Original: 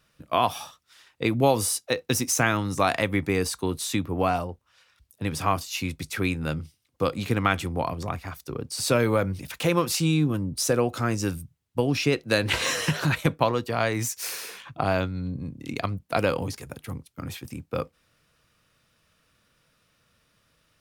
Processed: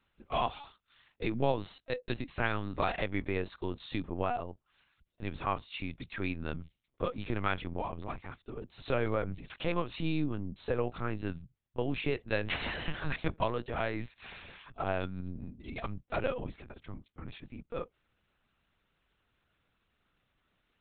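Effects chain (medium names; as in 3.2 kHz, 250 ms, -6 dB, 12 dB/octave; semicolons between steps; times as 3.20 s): LPC vocoder at 8 kHz pitch kept; trim -8.5 dB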